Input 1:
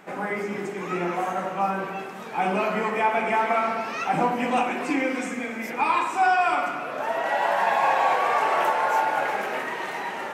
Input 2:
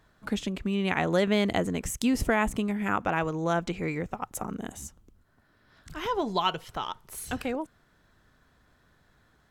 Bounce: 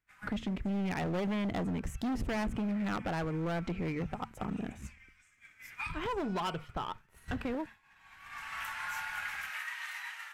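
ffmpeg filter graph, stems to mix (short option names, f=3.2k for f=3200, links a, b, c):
-filter_complex "[0:a]highpass=f=1.4k:w=0.5412,highpass=f=1.4k:w=1.3066,highshelf=f=9.3k:g=5.5,volume=-2dB[a];[1:a]bass=f=250:g=6,treble=f=4k:g=-14,bandreject=f=74.88:t=h:w=4,bandreject=f=149.76:t=h:w=4,bandreject=f=224.64:t=h:w=4,volume=26dB,asoftclip=hard,volume=-26dB,volume=2.5dB,asplit=2[b][c];[c]apad=whole_len=455946[d];[a][d]sidechaincompress=threshold=-43dB:ratio=20:attack=12:release=1100[e];[e][b]amix=inputs=2:normalize=0,agate=range=-33dB:threshold=-33dB:ratio=3:detection=peak,acompressor=threshold=-38dB:ratio=2"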